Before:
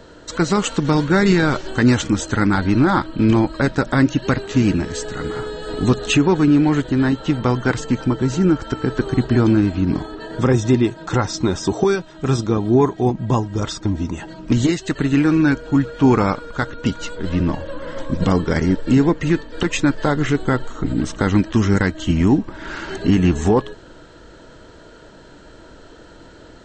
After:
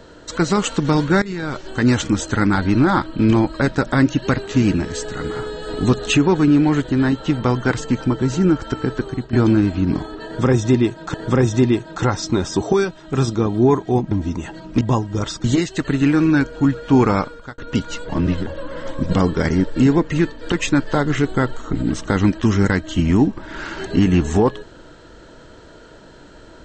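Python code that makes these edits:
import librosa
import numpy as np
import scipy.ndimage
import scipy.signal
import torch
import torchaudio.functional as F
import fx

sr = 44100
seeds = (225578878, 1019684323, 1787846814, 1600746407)

y = fx.edit(x, sr, fx.fade_in_from(start_s=1.22, length_s=0.79, floor_db=-19.0),
    fx.fade_out_to(start_s=8.81, length_s=0.52, floor_db=-13.5),
    fx.repeat(start_s=10.25, length_s=0.89, count=2),
    fx.move(start_s=13.22, length_s=0.63, to_s=14.55),
    fx.fade_out_span(start_s=16.33, length_s=0.36),
    fx.reverse_span(start_s=17.2, length_s=0.38), tone=tone)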